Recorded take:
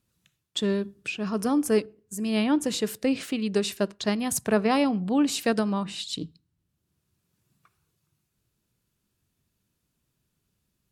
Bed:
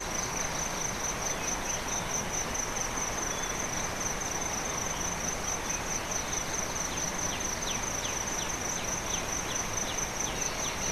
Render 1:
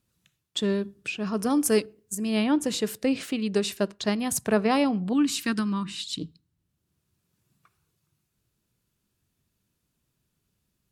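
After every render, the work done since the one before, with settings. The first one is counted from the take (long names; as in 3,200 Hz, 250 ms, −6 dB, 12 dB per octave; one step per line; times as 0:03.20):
0:01.50–0:02.15: high-shelf EQ 2,800 Hz +8 dB
0:05.13–0:06.20: flat-topped bell 600 Hz −15.5 dB 1.1 octaves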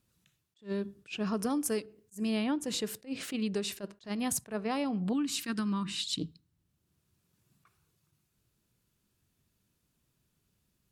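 downward compressor 10 to 1, threshold −28 dBFS, peak gain reduction 12 dB
level that may rise only so fast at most 290 dB per second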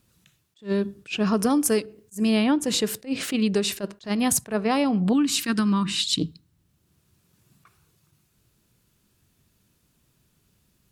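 level +10 dB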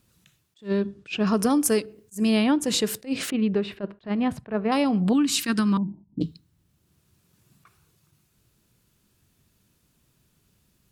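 0:00.68–0:01.27: high-frequency loss of the air 78 metres
0:03.30–0:04.72: high-frequency loss of the air 450 metres
0:05.77–0:06.21: Chebyshev low-pass with heavy ripple 930 Hz, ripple 6 dB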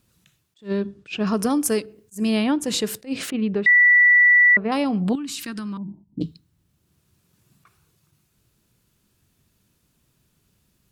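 0:03.66–0:04.57: beep over 1,960 Hz −10.5 dBFS
0:05.15–0:06.04: downward compressor, threshold −28 dBFS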